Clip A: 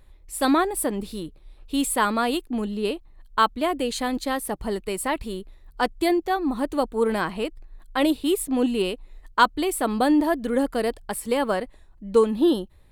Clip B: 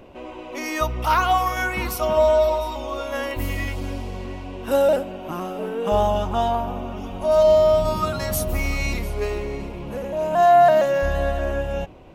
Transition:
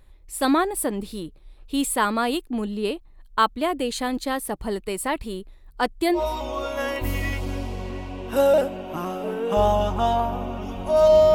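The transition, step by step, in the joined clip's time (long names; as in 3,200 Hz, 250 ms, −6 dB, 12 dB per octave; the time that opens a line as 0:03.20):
clip A
0:06.18: continue with clip B from 0:02.53, crossfade 0.10 s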